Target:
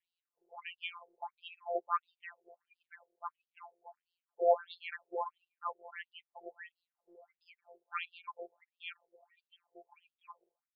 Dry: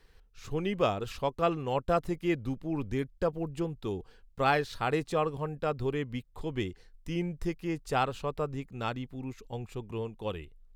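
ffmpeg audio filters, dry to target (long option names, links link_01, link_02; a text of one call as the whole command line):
ffmpeg -i in.wav -af "afftdn=noise_reduction=17:noise_floor=-47,aemphasis=mode=reproduction:type=bsi,afreqshift=-170,afftfilt=real='hypot(re,im)*cos(PI*b)':imag='0':win_size=1024:overlap=0.75,afftfilt=real='re*between(b*sr/1024,520*pow(3800/520,0.5+0.5*sin(2*PI*1.5*pts/sr))/1.41,520*pow(3800/520,0.5+0.5*sin(2*PI*1.5*pts/sr))*1.41)':imag='im*between(b*sr/1024,520*pow(3800/520,0.5+0.5*sin(2*PI*1.5*pts/sr))/1.41,520*pow(3800/520,0.5+0.5*sin(2*PI*1.5*pts/sr))*1.41)':win_size=1024:overlap=0.75,volume=4.5dB" out.wav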